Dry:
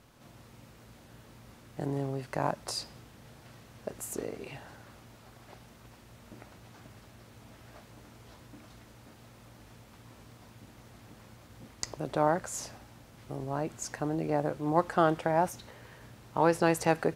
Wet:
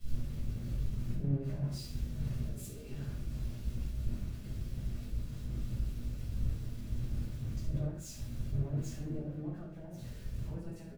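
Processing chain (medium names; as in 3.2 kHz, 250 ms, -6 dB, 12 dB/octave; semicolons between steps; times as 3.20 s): jump at every zero crossing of -29.5 dBFS; compression 6:1, threshold -30 dBFS, peak gain reduction 12 dB; amplifier tone stack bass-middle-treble 10-0-1; hum notches 60/120 Hz; on a send: feedback delay 111 ms, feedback 35%, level -8 dB; on the sum: time stretch by phase-locked vocoder 0.64×; treble shelf 2.2 kHz -9 dB; band-stop 2 kHz, Q 27; simulated room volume 450 m³, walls furnished, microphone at 6.7 m; three bands expanded up and down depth 100%; trim +1 dB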